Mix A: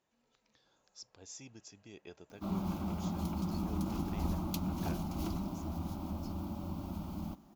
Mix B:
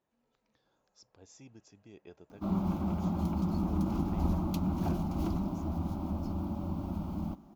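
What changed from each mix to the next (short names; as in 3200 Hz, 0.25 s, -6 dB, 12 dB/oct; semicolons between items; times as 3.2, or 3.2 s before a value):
background +5.0 dB; master: add high shelf 2100 Hz -10.5 dB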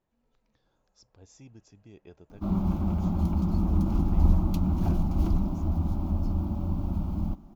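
master: remove HPF 210 Hz 6 dB/oct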